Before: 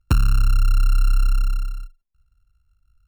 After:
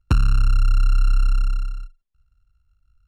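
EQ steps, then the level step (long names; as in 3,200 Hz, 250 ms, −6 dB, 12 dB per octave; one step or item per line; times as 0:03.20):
high-frequency loss of the air 53 metres
0.0 dB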